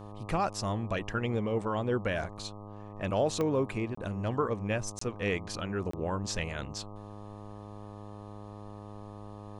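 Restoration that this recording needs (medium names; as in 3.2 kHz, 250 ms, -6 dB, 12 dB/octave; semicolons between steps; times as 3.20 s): de-click; de-hum 103.4 Hz, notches 12; interpolate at 3.95/4.99/5.91 s, 24 ms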